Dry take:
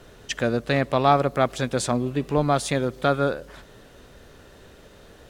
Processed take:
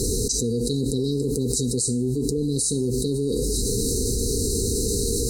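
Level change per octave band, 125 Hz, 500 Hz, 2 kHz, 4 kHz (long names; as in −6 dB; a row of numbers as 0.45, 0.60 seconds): +3.0 dB, −1.0 dB, below −40 dB, +4.0 dB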